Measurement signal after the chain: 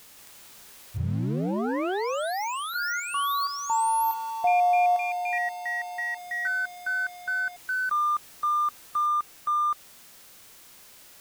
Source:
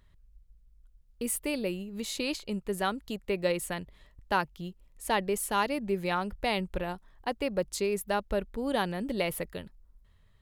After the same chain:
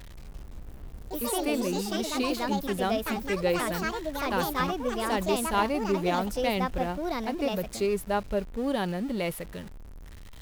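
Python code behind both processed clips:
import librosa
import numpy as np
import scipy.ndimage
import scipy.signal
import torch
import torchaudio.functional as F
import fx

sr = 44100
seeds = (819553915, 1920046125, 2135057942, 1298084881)

y = x + 0.5 * 10.0 ** (-40.0 / 20.0) * np.sign(x)
y = fx.hpss(y, sr, part='percussive', gain_db=-7)
y = fx.echo_pitch(y, sr, ms=172, semitones=4, count=3, db_per_echo=-3.0)
y = F.gain(torch.from_numpy(y), 2.0).numpy()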